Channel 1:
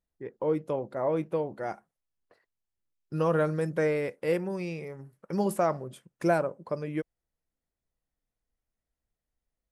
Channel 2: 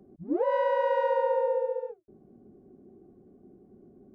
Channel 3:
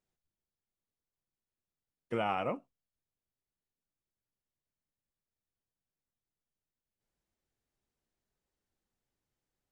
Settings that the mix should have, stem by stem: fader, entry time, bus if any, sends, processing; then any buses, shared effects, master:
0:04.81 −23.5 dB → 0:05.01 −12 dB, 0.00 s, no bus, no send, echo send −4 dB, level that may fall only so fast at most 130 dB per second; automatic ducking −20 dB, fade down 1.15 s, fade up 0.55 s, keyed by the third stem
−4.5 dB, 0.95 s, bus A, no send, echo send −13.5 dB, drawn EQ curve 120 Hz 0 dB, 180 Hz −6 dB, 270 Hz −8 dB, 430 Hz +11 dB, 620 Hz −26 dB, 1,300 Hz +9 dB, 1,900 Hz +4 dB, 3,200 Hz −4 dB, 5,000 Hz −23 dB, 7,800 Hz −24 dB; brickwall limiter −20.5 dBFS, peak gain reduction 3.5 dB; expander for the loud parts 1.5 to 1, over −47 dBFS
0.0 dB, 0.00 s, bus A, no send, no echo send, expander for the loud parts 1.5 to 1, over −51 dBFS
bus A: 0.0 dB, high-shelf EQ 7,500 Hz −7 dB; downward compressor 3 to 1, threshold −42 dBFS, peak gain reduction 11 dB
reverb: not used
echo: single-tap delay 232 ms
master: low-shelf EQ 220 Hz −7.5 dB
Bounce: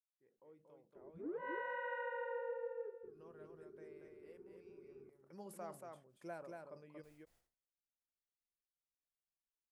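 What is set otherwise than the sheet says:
stem 1 −23.5 dB → −34.0 dB
stem 2: missing expander for the loud parts 1.5 to 1, over −47 dBFS
stem 3: muted

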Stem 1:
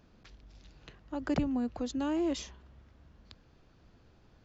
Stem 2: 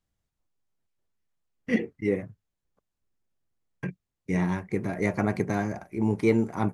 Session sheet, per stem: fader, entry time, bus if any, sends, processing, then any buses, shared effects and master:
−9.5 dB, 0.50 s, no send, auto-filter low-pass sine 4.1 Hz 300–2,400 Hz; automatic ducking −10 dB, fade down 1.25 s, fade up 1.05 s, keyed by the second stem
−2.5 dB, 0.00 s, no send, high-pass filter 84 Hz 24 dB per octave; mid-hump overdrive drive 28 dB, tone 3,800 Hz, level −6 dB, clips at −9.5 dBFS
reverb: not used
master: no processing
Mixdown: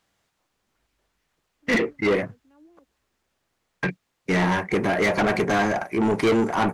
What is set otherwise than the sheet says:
stem 1 −9.5 dB → −19.0 dB
stem 2: missing high-pass filter 84 Hz 24 dB per octave

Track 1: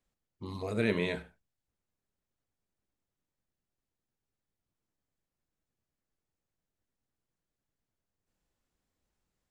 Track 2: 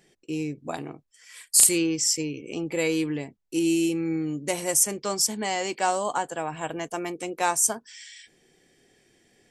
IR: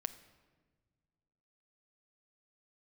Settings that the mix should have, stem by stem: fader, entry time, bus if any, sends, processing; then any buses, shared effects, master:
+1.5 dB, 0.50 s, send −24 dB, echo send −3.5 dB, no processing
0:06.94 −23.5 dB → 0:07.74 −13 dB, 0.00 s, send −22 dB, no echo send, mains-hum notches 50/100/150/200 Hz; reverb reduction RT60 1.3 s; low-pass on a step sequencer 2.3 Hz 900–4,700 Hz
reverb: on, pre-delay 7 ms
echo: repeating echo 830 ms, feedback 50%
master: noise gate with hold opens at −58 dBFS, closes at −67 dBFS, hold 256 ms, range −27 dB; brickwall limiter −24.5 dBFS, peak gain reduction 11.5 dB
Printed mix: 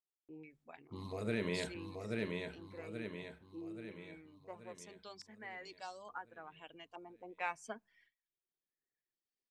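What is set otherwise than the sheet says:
stem 1 +1.5 dB → −6.0 dB
reverb return −8.5 dB

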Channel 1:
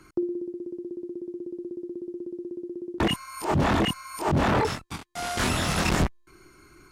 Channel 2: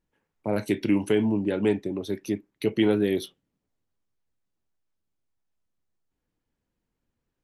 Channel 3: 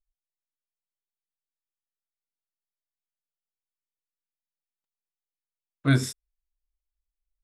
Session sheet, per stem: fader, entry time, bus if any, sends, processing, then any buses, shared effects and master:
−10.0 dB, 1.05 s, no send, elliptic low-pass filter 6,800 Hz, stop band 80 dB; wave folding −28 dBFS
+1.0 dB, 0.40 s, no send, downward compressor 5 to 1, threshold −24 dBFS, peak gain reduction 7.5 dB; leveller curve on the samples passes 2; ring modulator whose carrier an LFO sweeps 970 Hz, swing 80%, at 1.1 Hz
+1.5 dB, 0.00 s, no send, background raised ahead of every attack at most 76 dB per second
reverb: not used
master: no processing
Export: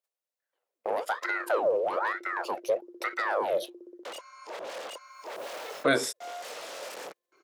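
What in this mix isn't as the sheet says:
stem 2 +1.0 dB → −6.5 dB
master: extra high-pass with resonance 520 Hz, resonance Q 4

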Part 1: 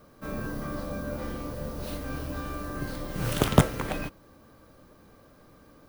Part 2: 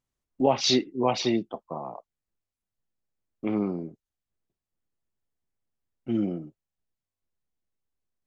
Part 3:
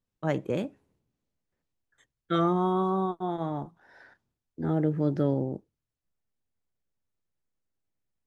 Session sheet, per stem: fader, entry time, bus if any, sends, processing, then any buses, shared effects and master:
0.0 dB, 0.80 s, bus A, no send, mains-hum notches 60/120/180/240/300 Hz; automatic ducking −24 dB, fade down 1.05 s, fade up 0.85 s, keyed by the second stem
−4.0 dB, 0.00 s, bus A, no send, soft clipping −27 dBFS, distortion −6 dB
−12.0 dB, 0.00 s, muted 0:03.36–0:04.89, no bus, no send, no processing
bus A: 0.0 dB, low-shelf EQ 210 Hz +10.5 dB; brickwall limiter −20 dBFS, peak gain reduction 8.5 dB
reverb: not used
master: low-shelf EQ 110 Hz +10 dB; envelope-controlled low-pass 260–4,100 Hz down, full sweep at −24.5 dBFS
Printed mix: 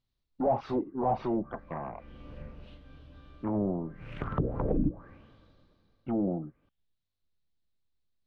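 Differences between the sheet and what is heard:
stem 3: muted
master: missing low-shelf EQ 110 Hz +10 dB

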